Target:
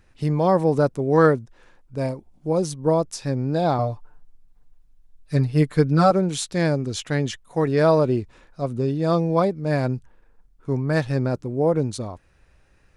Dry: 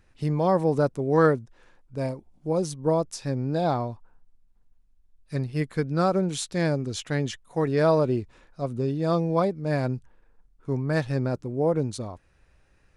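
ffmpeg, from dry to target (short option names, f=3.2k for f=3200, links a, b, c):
-filter_complex "[0:a]asettb=1/sr,asplit=3[a][b][c];[a]atrim=end=3.784[d];[b]atrim=start=3.78:end=6.11,asetpts=PTS-STARTPTS,afade=t=in:d=0.004:c=qsin,afade=t=out:st=2.326:d=0.004:c=qsin,aecho=1:1:6.8:0.88,atrim=end_sample=102753[e];[c]atrim=start=6.106[f];[d][e]acrossfade=d=0.004:c1=hsin:c2=qsin[g];[g][f]acrossfade=d=0.004:c1=qsin:c2=hsin,volume=3.5dB"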